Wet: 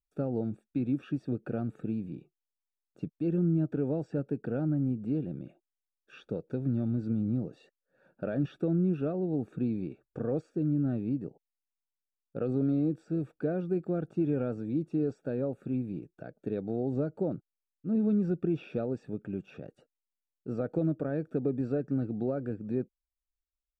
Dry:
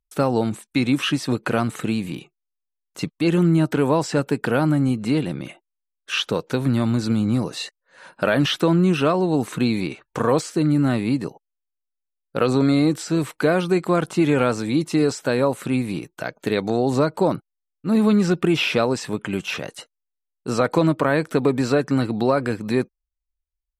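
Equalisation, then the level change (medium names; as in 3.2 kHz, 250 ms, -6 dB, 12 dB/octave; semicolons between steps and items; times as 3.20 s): boxcar filter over 43 samples; -9.0 dB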